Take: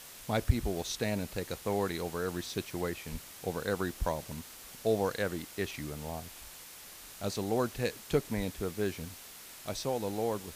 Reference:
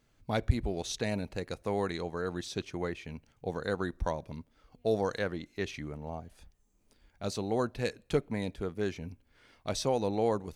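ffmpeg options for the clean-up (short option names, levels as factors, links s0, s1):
-filter_complex "[0:a]adeclick=t=4,asplit=3[s0][s1][s2];[s0]afade=t=out:st=3.11:d=0.02[s3];[s1]highpass=f=140:w=0.5412,highpass=f=140:w=1.3066,afade=t=in:st=3.11:d=0.02,afade=t=out:st=3.23:d=0.02[s4];[s2]afade=t=in:st=3.23:d=0.02[s5];[s3][s4][s5]amix=inputs=3:normalize=0,asplit=3[s6][s7][s8];[s6]afade=t=out:st=8.36:d=0.02[s9];[s7]highpass=f=140:w=0.5412,highpass=f=140:w=1.3066,afade=t=in:st=8.36:d=0.02,afade=t=out:st=8.48:d=0.02[s10];[s8]afade=t=in:st=8.48:d=0.02[s11];[s9][s10][s11]amix=inputs=3:normalize=0,afwtdn=0.004,asetnsamples=n=441:p=0,asendcmd='9.05 volume volume 4dB',volume=1"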